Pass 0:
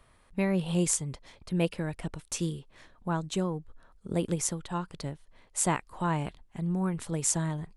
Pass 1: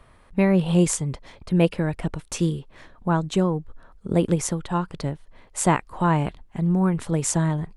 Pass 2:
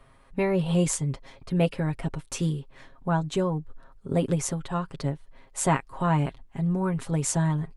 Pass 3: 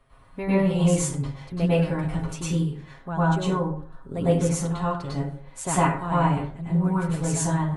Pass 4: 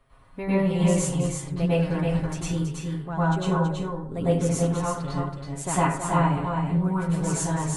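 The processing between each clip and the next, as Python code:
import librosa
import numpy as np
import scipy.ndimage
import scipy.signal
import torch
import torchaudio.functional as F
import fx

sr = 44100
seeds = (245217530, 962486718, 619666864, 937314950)

y1 = fx.high_shelf(x, sr, hz=3300.0, db=-8.5)
y1 = F.gain(torch.from_numpy(y1), 9.0).numpy()
y2 = y1 + 0.62 * np.pad(y1, (int(7.4 * sr / 1000.0), 0))[:len(y1)]
y2 = F.gain(torch.from_numpy(y2), -4.5).numpy()
y3 = fx.rev_plate(y2, sr, seeds[0], rt60_s=0.5, hf_ratio=0.55, predelay_ms=90, drr_db=-9.5)
y3 = F.gain(torch.from_numpy(y3), -7.0).numpy()
y4 = y3 + 10.0 ** (-5.0 / 20.0) * np.pad(y3, (int(326 * sr / 1000.0), 0))[:len(y3)]
y4 = F.gain(torch.from_numpy(y4), -1.5).numpy()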